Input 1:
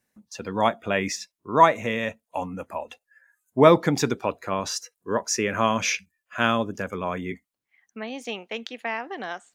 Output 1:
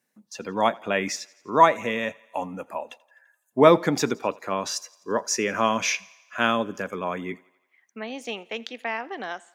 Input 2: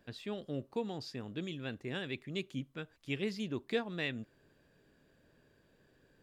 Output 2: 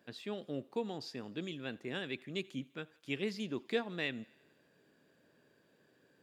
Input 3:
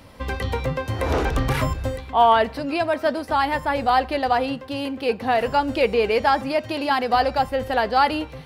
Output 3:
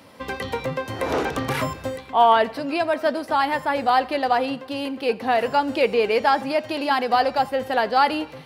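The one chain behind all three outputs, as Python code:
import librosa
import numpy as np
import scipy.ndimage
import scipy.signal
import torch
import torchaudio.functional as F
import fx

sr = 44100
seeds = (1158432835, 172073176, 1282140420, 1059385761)

y = scipy.signal.sosfilt(scipy.signal.butter(2, 170.0, 'highpass', fs=sr, output='sos'), x)
y = fx.echo_thinned(y, sr, ms=85, feedback_pct=61, hz=330.0, wet_db=-23.5)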